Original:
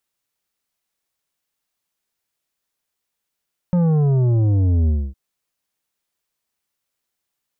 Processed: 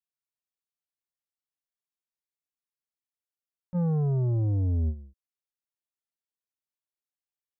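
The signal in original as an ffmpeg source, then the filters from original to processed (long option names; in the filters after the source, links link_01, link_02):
-f lavfi -i "aevalsrc='0.188*clip((1.41-t)/0.26,0,1)*tanh(2.82*sin(2*PI*180*1.41/log(65/180)*(exp(log(65/180)*t/1.41)-1)))/tanh(2.82)':duration=1.41:sample_rate=44100"
-af "agate=range=-21dB:threshold=-16dB:ratio=16:detection=peak"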